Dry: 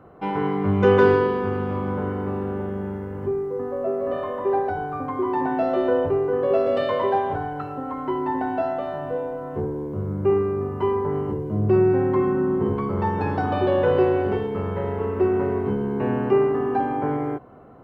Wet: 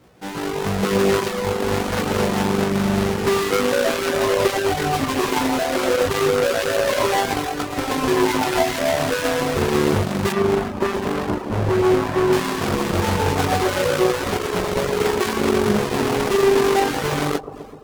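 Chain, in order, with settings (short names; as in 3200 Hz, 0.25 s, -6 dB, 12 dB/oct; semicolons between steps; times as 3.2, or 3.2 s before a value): half-waves squared off; dynamic EQ 100 Hz, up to -5 dB, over -34 dBFS, Q 1.9; AGC gain up to 16 dB; chorus 0.27 Hz, delay 16.5 ms, depth 6.5 ms; 10.32–12.33 high shelf 2300 Hz -11.5 dB; limiter -11.5 dBFS, peak gain reduction 9.5 dB; analogue delay 0.127 s, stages 1024, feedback 63%, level -7 dB; added harmonics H 3 -17 dB, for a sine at -9 dBFS; reverb removal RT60 0.51 s; Doppler distortion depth 0.25 ms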